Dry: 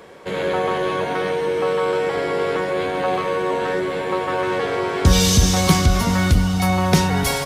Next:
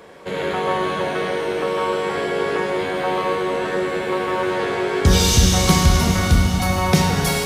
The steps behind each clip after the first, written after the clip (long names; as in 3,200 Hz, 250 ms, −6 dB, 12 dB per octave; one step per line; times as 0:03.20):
four-comb reverb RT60 2.7 s, combs from 26 ms, DRR 1.5 dB
level −1 dB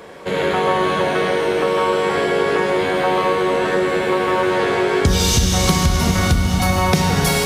downward compressor, threshold −17 dBFS, peak gain reduction 8.5 dB
level +5 dB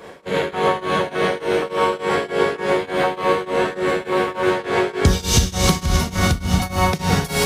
shaped tremolo triangle 3.4 Hz, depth 95%
level +2 dB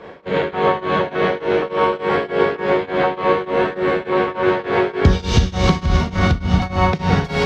high-frequency loss of the air 210 metres
level +2.5 dB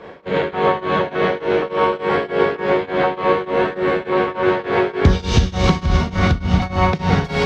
highs frequency-modulated by the lows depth 0.14 ms